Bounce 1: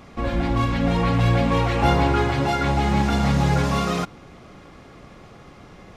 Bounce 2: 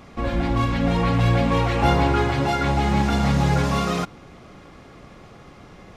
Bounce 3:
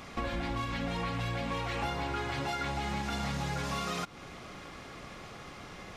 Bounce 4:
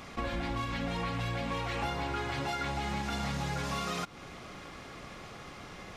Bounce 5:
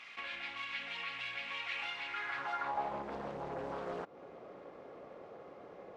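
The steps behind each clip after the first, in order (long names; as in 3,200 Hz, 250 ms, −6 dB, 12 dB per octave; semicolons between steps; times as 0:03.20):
no processing that can be heard
tilt shelving filter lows −4.5 dB, about 920 Hz; downward compressor 10 to 1, threshold −31 dBFS, peak gain reduction 16.5 dB
level that may rise only so fast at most 450 dB per second
band-pass filter sweep 2,500 Hz → 510 Hz, 0:02.05–0:03.06; highs frequency-modulated by the lows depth 0.49 ms; level +3.5 dB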